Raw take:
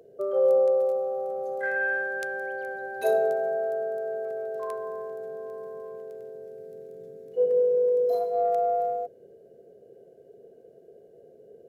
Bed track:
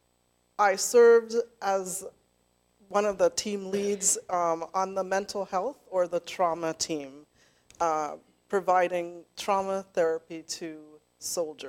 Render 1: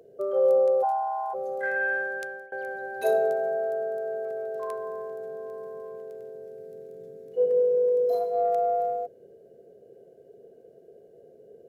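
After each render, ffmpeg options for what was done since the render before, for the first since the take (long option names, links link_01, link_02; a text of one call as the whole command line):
ffmpeg -i in.wav -filter_complex "[0:a]asplit=3[link_01][link_02][link_03];[link_01]afade=type=out:start_time=0.82:duration=0.02[link_04];[link_02]afreqshift=260,afade=type=in:start_time=0.82:duration=0.02,afade=type=out:start_time=1.33:duration=0.02[link_05];[link_03]afade=type=in:start_time=1.33:duration=0.02[link_06];[link_04][link_05][link_06]amix=inputs=3:normalize=0,asplit=2[link_07][link_08];[link_07]atrim=end=2.52,asetpts=PTS-STARTPTS,afade=type=out:start_time=1.94:duration=0.58:curve=qsin:silence=0.0749894[link_09];[link_08]atrim=start=2.52,asetpts=PTS-STARTPTS,afade=type=in:duration=0.004:curve=hsin:silence=0.0749894[link_10];[link_09][link_10]concat=n=2:v=0:a=1" out.wav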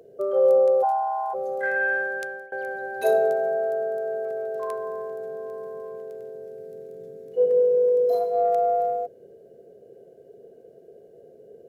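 ffmpeg -i in.wav -af "volume=3dB" out.wav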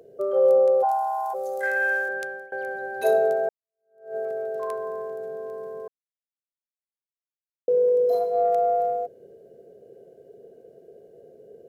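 ffmpeg -i in.wav -filter_complex "[0:a]asettb=1/sr,asplit=3[link_01][link_02][link_03];[link_01]atrim=end=0.914[link_04];[link_02]atrim=start=0.91:end=2.09,asetpts=PTS-STARTPTS,afade=type=in:duration=0.004:curve=qsin,afade=type=out:start_time=1.176:duration=0.004:curve=qsin,bass=frequency=250:gain=-13,treble=frequency=4000:gain=14[link_05];[link_03]atrim=start=2.086[link_06];[link_04][link_05]acrossfade=duration=0.004:curve1=hsin:curve2=qsin[link_07];[link_07][link_06]acrossfade=duration=0.004:curve1=qsin:curve2=hsin,asplit=4[link_08][link_09][link_10][link_11];[link_08]atrim=end=3.49,asetpts=PTS-STARTPTS,afade=type=out:start_time=3.486:duration=0.004:curve=hsin[link_12];[link_09]atrim=start=3.49:end=5.88,asetpts=PTS-STARTPTS,afade=type=in:duration=0.67:curve=exp,afade=type=out:start_time=2.386:duration=0.004:curve=hsin[link_13];[link_10]atrim=start=5.88:end=7.68,asetpts=PTS-STARTPTS,volume=0[link_14];[link_11]atrim=start=7.68,asetpts=PTS-STARTPTS,afade=type=in:duration=0.004:curve=hsin[link_15];[link_12][link_13][link_14][link_15]concat=n=4:v=0:a=1" out.wav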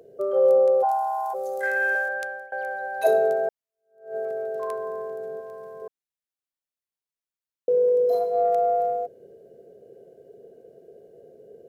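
ffmpeg -i in.wav -filter_complex "[0:a]asettb=1/sr,asplit=3[link_01][link_02][link_03];[link_01]atrim=end=1.954[link_04];[link_02]atrim=start=1.95:end=3.07,asetpts=PTS-STARTPTS,afade=type=in:duration=0.004:curve=qsin,afade=type=out:start_time=1.116:duration=0.004:curve=qsin,lowshelf=frequency=490:width_type=q:width=3:gain=-7[link_05];[link_03]atrim=start=3.066[link_06];[link_04][link_05]acrossfade=duration=0.004:curve1=hsin:curve2=qsin[link_07];[link_07][link_06]acrossfade=duration=0.004:curve1=qsin:curve2=hsin,asettb=1/sr,asplit=3[link_08][link_09][link_10];[link_08]atrim=end=5.404[link_11];[link_09]atrim=start=5.4:end=5.82,asetpts=PTS-STARTPTS,afade=type=in:duration=0.004:curve=qsin,afade=type=out:start_time=0.416:duration=0.004:curve=qsin,equalizer=frequency=320:width_type=o:width=0.77:gain=-13.5[link_12];[link_10]atrim=start=5.816[link_13];[link_11][link_12]acrossfade=duration=0.004:curve1=hsin:curve2=qsin[link_14];[link_14][link_13]acrossfade=duration=0.004:curve1=qsin:curve2=hsin" out.wav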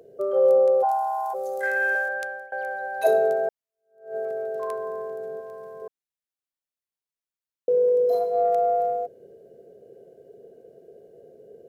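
ffmpeg -i in.wav -af anull out.wav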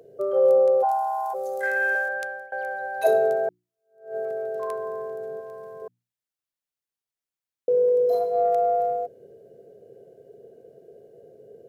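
ffmpeg -i in.wav -af "equalizer=frequency=120:width_type=o:width=0.29:gain=8.5,bandreject=frequency=60:width_type=h:width=6,bandreject=frequency=120:width_type=h:width=6,bandreject=frequency=180:width_type=h:width=6,bandreject=frequency=240:width_type=h:width=6,bandreject=frequency=300:width_type=h:width=6,bandreject=frequency=360:width_type=h:width=6" out.wav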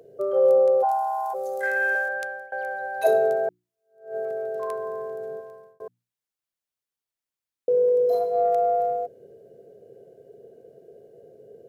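ffmpeg -i in.wav -filter_complex "[0:a]asplit=2[link_01][link_02];[link_01]atrim=end=5.8,asetpts=PTS-STARTPTS,afade=type=out:start_time=5.33:duration=0.47[link_03];[link_02]atrim=start=5.8,asetpts=PTS-STARTPTS,afade=type=in:duration=0.004:curve=hsin[link_04];[link_03][link_04]concat=n=2:v=0:a=1" out.wav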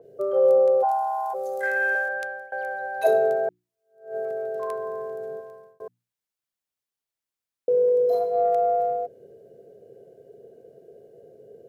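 ffmpeg -i in.wav -af "adynamicequalizer=threshold=0.00708:dfrequency=4600:dqfactor=0.7:tfrequency=4600:tqfactor=0.7:attack=5:release=100:ratio=0.375:range=2:mode=cutabove:tftype=highshelf" out.wav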